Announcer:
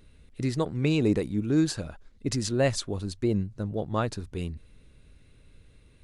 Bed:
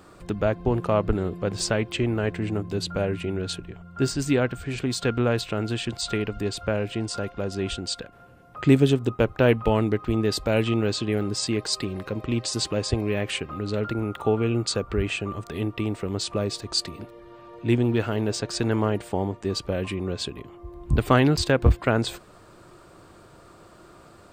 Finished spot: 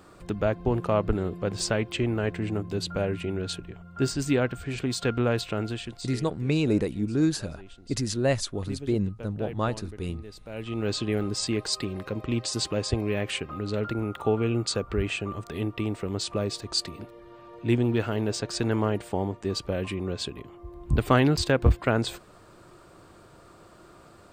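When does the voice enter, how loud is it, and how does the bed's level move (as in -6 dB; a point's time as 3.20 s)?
5.65 s, 0.0 dB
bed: 5.61 s -2 dB
6.40 s -20.5 dB
10.41 s -20.5 dB
10.91 s -2 dB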